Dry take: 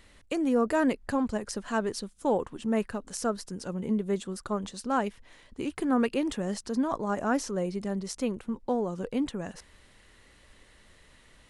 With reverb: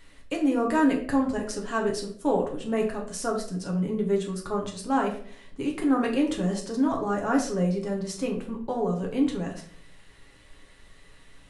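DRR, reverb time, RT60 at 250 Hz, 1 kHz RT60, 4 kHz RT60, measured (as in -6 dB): -1.0 dB, 0.55 s, 0.70 s, 0.45 s, 0.40 s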